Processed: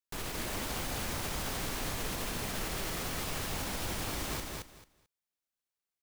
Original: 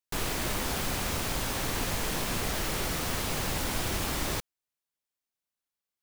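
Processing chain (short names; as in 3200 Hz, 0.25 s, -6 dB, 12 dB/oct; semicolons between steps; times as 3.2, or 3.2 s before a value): limiter -23.5 dBFS, peak gain reduction 5 dB; on a send: feedback echo 0.22 s, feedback 19%, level -3 dB; on the sum: gain -4.5 dB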